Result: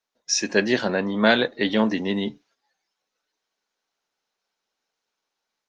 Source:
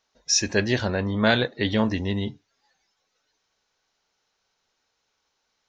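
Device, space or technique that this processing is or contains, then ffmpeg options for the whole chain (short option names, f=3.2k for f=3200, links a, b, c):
video call: -af "highpass=f=180:w=0.5412,highpass=f=180:w=1.3066,dynaudnorm=f=310:g=3:m=4.5dB,agate=range=-9dB:threshold=-57dB:ratio=16:detection=peak" -ar 48000 -c:a libopus -b:a 32k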